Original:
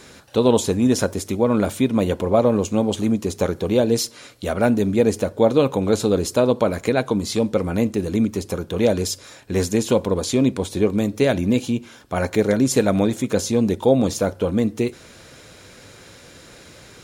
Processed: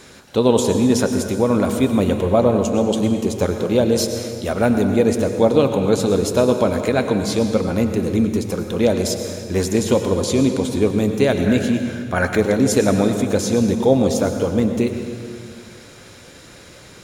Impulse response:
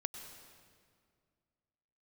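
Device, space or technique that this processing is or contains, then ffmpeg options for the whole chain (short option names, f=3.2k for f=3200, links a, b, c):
stairwell: -filter_complex "[1:a]atrim=start_sample=2205[a];[0:a][a]afir=irnorm=-1:irlink=0,asettb=1/sr,asplit=3[b][c][d];[b]atrim=end=11.464[e];[c]atrim=start=11.46:end=12.38,asetpts=PTS-STARTPTS,afade=t=in:d=0.004:c=qsin,afade=t=out:st=0.916:d=0.004:c=qsin,equalizer=f=1.6k:w=3.1:g=10.5[f];[d]atrim=start=12.376[g];[e][f]acrossfade=d=0.004:c1=hsin:c2=qsin[h];[h][g]acrossfade=d=0.004:c1=qsin:c2=hsin,volume=2.5dB"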